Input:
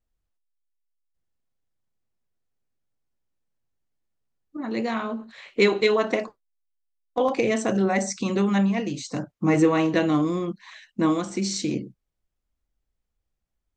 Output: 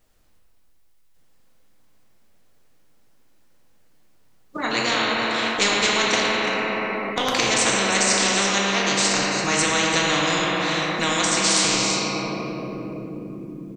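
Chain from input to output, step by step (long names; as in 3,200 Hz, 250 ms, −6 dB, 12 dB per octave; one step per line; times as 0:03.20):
low-shelf EQ 120 Hz −11 dB
single-tap delay 337 ms −15 dB
rectangular room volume 140 cubic metres, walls hard, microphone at 0.48 metres
every bin compressed towards the loudest bin 4 to 1
level +1.5 dB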